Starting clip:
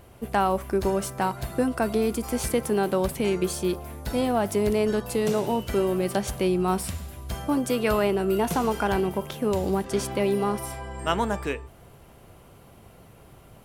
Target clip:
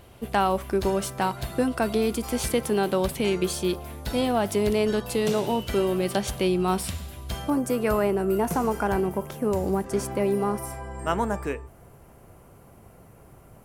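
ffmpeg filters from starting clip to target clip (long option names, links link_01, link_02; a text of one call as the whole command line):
ffmpeg -i in.wav -af "asetnsamples=nb_out_samples=441:pad=0,asendcmd='7.5 equalizer g -10',equalizer=frequency=3500:width_type=o:width=1:gain=5" out.wav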